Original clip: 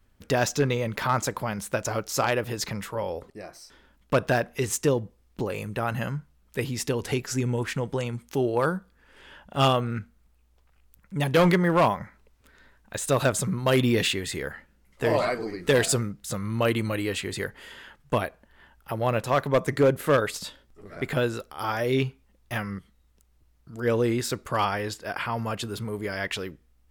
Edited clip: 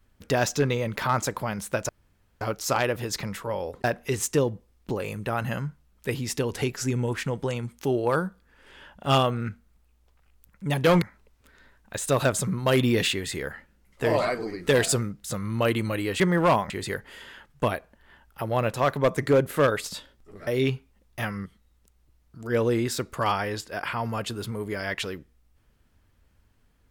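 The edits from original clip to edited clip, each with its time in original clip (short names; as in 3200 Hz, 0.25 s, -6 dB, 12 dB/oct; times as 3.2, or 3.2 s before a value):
1.89 insert room tone 0.52 s
3.32–4.34 cut
11.52–12.02 move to 17.2
20.97–21.8 cut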